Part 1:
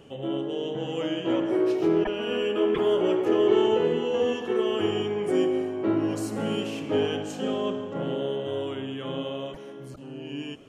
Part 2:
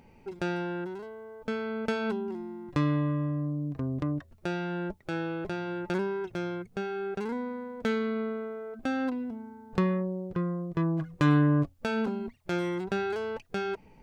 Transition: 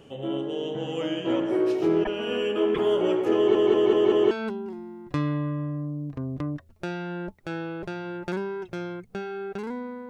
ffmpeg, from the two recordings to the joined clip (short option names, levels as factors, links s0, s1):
-filter_complex "[0:a]apad=whole_dur=10.09,atrim=end=10.09,asplit=5[s0][s1][s2][s3][s4];[s0]atrim=end=3.552[s5];[s1]atrim=start=3.358:end=3.552[s6];[s2]atrim=start=3.358:end=3.552[s7];[s3]atrim=start=3.358:end=3.552[s8];[s4]atrim=start=3.358:end=3.552[s9];[1:a]atrim=start=1.928:end=7.71[s10];[s5][s6]acrossfade=d=0.004:c1=hsin:c2=hsin[s11];[s11][s7]acrossfade=d=0.004:c1=hsin:c2=hsin[s12];[s12][s8]acrossfade=d=0.004:c1=hsin:c2=hsin[s13];[s13][s9]acrossfade=d=0.004:c1=hsin:c2=hsin[s14];[s14][s10]acrossfade=d=0.004:c1=hsin:c2=hsin"